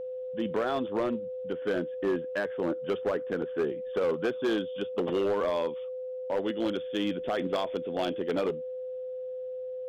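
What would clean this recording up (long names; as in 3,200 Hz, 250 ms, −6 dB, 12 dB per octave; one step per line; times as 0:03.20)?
clipped peaks rebuilt −22.5 dBFS
notch filter 510 Hz, Q 30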